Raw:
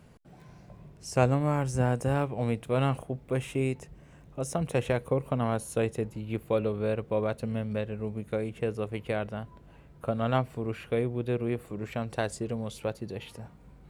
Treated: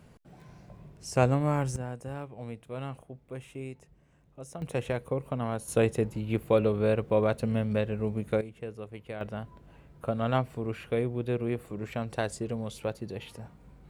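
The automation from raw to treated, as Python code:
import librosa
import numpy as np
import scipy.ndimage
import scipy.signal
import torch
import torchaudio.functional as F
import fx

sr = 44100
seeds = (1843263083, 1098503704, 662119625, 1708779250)

y = fx.gain(x, sr, db=fx.steps((0.0, 0.0), (1.76, -11.0), (4.62, -3.5), (5.68, 3.5), (8.41, -8.5), (9.21, -0.5)))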